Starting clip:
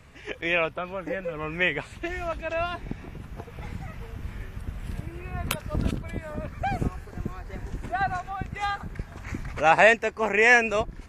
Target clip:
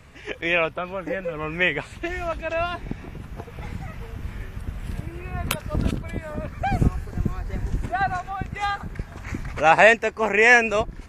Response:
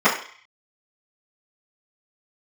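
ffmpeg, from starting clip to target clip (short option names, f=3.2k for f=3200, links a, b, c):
-filter_complex "[0:a]asettb=1/sr,asplit=3[a][b][c];[a]atrim=end=6.724[d];[b]atrim=start=6.72:end=7.86,asetpts=PTS-STARTPTS,afade=t=in:d=0.004:c=qsin,afade=t=out:st=1.136:d=0.004:c=qsin,bass=f=250:g=6,treble=f=4k:g=2[e];[c]atrim=start=7.856[f];[d][e]acrossfade=d=0.004:c1=hsin:c2=qsin[g];[g][f]acrossfade=d=0.004:c1=qsin:c2=hsin,volume=3dB"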